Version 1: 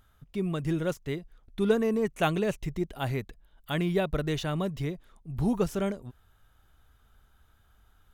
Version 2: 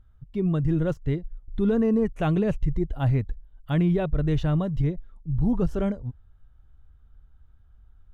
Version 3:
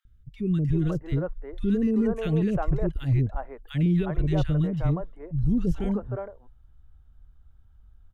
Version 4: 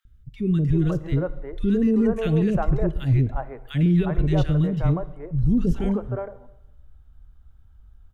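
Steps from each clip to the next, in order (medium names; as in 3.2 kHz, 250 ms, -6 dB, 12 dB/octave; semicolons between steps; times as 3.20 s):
RIAA curve playback; spectral noise reduction 8 dB; peak limiter -15.5 dBFS, peak gain reduction 11 dB
three bands offset in time highs, lows, mids 50/360 ms, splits 440/1600 Hz
plate-style reverb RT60 0.98 s, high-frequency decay 0.9×, DRR 14.5 dB; trim +3.5 dB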